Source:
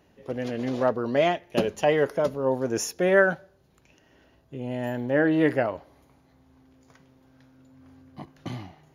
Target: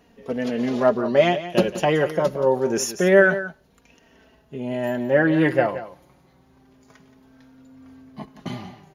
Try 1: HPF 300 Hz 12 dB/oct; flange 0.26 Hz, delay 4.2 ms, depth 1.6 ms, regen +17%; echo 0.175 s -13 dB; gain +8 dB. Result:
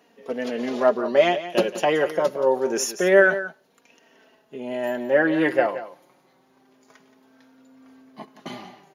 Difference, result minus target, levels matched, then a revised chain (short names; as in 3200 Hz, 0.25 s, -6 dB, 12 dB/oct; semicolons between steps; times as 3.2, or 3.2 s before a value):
250 Hz band -2.5 dB
flange 0.26 Hz, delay 4.2 ms, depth 1.6 ms, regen +17%; echo 0.175 s -13 dB; gain +8 dB